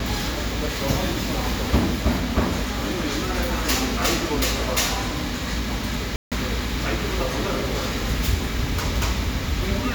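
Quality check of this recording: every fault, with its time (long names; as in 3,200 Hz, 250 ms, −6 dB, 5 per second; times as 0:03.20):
0:06.16–0:06.32: drop-out 157 ms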